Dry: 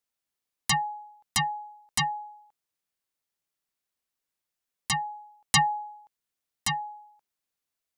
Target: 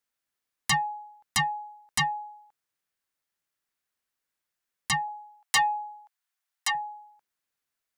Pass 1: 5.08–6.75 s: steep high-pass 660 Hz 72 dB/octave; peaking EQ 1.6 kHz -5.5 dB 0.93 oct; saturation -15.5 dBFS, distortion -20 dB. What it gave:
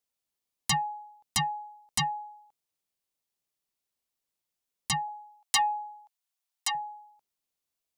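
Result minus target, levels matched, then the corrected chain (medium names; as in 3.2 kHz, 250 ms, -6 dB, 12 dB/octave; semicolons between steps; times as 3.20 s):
2 kHz band -5.0 dB
5.08–6.75 s: steep high-pass 660 Hz 72 dB/octave; peaking EQ 1.6 kHz +5.5 dB 0.93 oct; saturation -15.5 dBFS, distortion -17 dB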